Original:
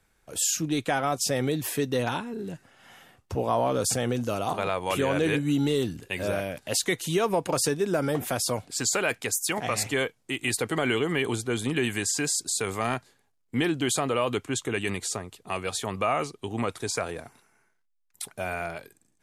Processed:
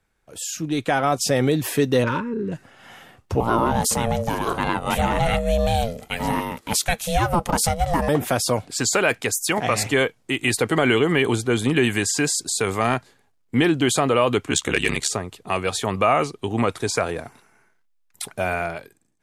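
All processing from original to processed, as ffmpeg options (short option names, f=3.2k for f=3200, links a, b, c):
-filter_complex "[0:a]asettb=1/sr,asplit=3[a][b][c];[a]atrim=end=2.044[d];[b]atrim=start=2.04:end=2.52,asetpts=PTS-STARTPTS,afade=t=in:d=0.004:c=qsin,afade=t=out:st=0.476:d=0.004:c=qsin,equalizer=f=3.6k:w=1.8:g=-9,adynamicsmooth=sensitivity=4.5:basefreq=3.5k,asuperstop=centerf=730:order=12:qfactor=2.5[e];[c]atrim=start=2.516[f];[d][e]acrossfade=d=0.004:c1=hsin:c2=qsin[g];[g][f]acrossfade=d=0.004:c1=qsin:c2=hsin,asettb=1/sr,asplit=3[h][i][j];[h]atrim=end=3.404[k];[i]atrim=start=3.4:end=8.09,asetpts=PTS-STARTPTS,afade=t=in:d=0.004:c=qsin,afade=t=out:st=4.686:d=0.004:c=qsin,aeval=exprs='val(0)*sin(2*PI*340*n/s)':c=same,highshelf=f=9.8k:g=11[l];[j]atrim=start=8.086[m];[k][l]acrossfade=d=0.004:c1=hsin:c2=qsin[n];[n][m]acrossfade=d=0.004:c1=qsin:c2=hsin,asettb=1/sr,asplit=3[o][p][q];[o]atrim=end=14.504[r];[p]atrim=start=14.5:end=15.08,asetpts=PTS-STARTPTS,afade=t=in:d=0.004:c=qsin,afade=t=out:st=0.576:d=0.004:c=qsin,equalizer=f=5.4k:w=0.3:g=9,asoftclip=type=hard:threshold=-13.5dB,aeval=exprs='val(0)*sin(2*PI*35*n/s)':c=same[s];[q]atrim=start=15.076[t];[r][s]acrossfade=d=0.004:c1=hsin:c2=qsin[u];[u][t]acrossfade=d=0.004:c1=qsin:c2=hsin,highshelf=f=4.5k:g=-5.5,dynaudnorm=f=170:g=9:m=11.5dB,volume=-2.5dB"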